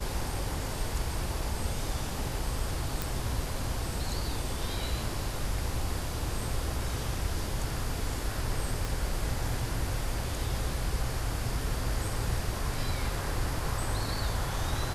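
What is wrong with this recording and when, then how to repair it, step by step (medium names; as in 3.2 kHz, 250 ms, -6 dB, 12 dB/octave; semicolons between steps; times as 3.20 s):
3.02 s: pop
8.85 s: pop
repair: de-click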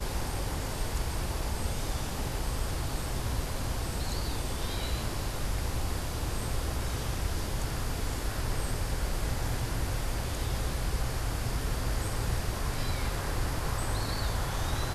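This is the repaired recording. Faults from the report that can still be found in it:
8.85 s: pop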